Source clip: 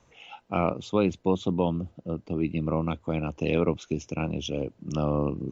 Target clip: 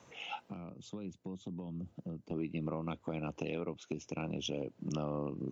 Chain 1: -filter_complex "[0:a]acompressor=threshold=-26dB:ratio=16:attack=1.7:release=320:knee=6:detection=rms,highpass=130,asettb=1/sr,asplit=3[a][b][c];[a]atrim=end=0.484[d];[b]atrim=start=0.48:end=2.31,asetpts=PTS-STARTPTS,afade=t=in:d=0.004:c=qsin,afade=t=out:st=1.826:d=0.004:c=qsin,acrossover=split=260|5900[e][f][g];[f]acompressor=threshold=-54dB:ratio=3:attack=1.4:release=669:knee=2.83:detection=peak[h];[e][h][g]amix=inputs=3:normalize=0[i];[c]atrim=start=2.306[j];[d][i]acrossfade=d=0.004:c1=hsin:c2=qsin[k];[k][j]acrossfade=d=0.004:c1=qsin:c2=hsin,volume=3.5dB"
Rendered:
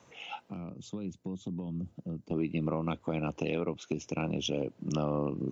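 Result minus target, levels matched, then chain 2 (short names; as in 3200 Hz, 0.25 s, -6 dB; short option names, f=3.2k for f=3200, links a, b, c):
compressor: peak gain reduction -6 dB
-filter_complex "[0:a]acompressor=threshold=-32.5dB:ratio=16:attack=1.7:release=320:knee=6:detection=rms,highpass=130,asettb=1/sr,asplit=3[a][b][c];[a]atrim=end=0.484[d];[b]atrim=start=0.48:end=2.31,asetpts=PTS-STARTPTS,afade=t=in:d=0.004:c=qsin,afade=t=out:st=1.826:d=0.004:c=qsin,acrossover=split=260|5900[e][f][g];[f]acompressor=threshold=-54dB:ratio=3:attack=1.4:release=669:knee=2.83:detection=peak[h];[e][h][g]amix=inputs=3:normalize=0[i];[c]atrim=start=2.306[j];[d][i]acrossfade=d=0.004:c1=hsin:c2=qsin[k];[k][j]acrossfade=d=0.004:c1=qsin:c2=hsin,volume=3.5dB"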